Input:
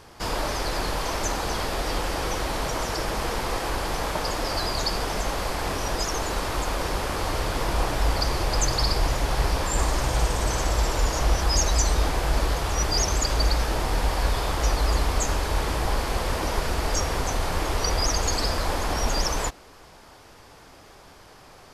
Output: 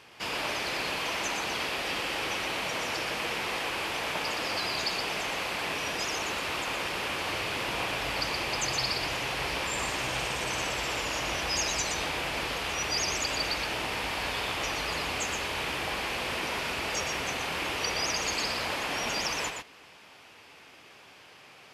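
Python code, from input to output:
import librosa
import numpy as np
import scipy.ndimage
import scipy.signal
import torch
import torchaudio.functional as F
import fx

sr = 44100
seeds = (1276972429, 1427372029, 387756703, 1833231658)

y = scipy.signal.sosfilt(scipy.signal.butter(2, 130.0, 'highpass', fs=sr, output='sos'), x)
y = fx.peak_eq(y, sr, hz=2600.0, db=13.5, octaves=0.99)
y = y + 10.0 ** (-5.5 / 20.0) * np.pad(y, (int(121 * sr / 1000.0), 0))[:len(y)]
y = F.gain(torch.from_numpy(y), -8.0).numpy()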